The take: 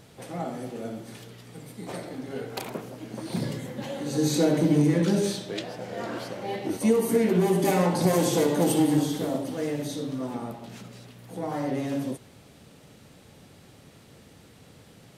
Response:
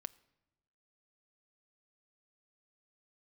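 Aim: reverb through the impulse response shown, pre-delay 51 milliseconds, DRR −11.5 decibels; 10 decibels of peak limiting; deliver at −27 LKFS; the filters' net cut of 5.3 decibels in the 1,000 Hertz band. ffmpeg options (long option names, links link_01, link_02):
-filter_complex "[0:a]equalizer=frequency=1000:width_type=o:gain=-7.5,alimiter=limit=-20.5dB:level=0:latency=1,asplit=2[link_01][link_02];[1:a]atrim=start_sample=2205,adelay=51[link_03];[link_02][link_03]afir=irnorm=-1:irlink=0,volume=15.5dB[link_04];[link_01][link_04]amix=inputs=2:normalize=0,volume=-7.5dB"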